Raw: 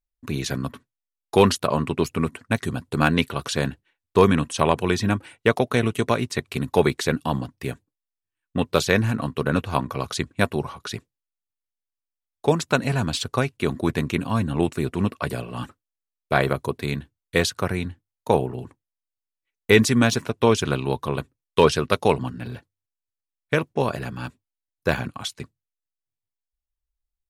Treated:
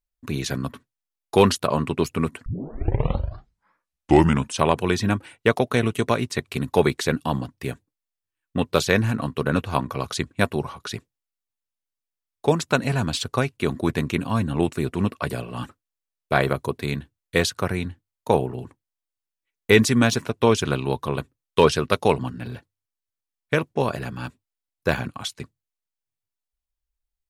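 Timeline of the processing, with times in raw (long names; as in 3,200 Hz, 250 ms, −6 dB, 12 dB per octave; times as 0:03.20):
0:02.46: tape start 2.15 s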